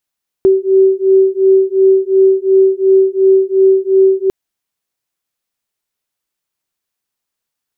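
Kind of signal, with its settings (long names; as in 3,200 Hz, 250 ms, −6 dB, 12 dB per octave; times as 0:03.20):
two tones that beat 382 Hz, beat 2.8 Hz, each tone −10 dBFS 3.85 s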